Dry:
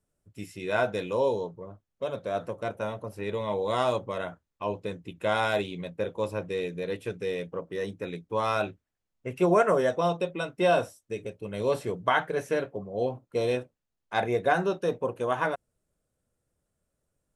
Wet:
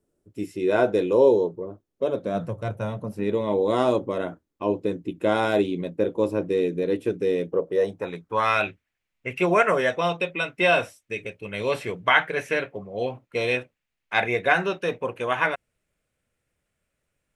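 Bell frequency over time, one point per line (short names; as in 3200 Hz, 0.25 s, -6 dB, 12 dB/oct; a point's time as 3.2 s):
bell +14.5 dB 1.2 oct
2.16 s 350 Hz
2.63 s 93 Hz
3.38 s 310 Hz
7.44 s 310 Hz
8.59 s 2300 Hz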